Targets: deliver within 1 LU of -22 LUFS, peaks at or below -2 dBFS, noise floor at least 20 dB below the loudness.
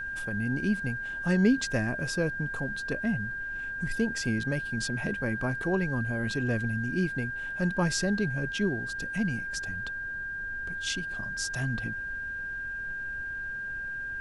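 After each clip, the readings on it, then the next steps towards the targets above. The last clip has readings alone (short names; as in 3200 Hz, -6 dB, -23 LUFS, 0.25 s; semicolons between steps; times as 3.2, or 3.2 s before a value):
steady tone 1600 Hz; tone level -33 dBFS; noise floor -36 dBFS; noise floor target -51 dBFS; loudness -30.5 LUFS; peak -12.0 dBFS; loudness target -22.0 LUFS
-> notch 1600 Hz, Q 30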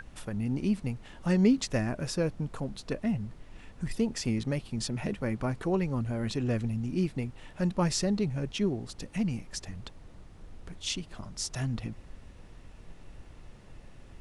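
steady tone none; noise floor -51 dBFS; noise floor target -52 dBFS
-> noise print and reduce 6 dB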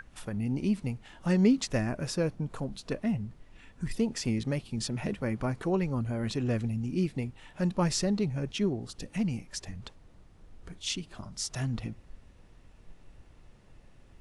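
noise floor -57 dBFS; loudness -31.5 LUFS; peak -12.5 dBFS; loudness target -22.0 LUFS
-> gain +9.5 dB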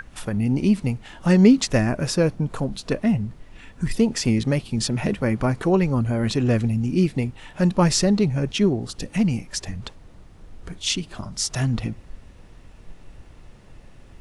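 loudness -22.0 LUFS; peak -3.0 dBFS; noise floor -47 dBFS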